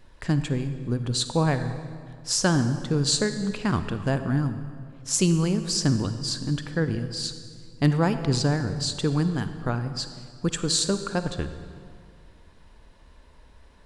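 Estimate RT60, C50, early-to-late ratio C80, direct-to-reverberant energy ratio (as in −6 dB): 2.1 s, 10.0 dB, 11.0 dB, 9.5 dB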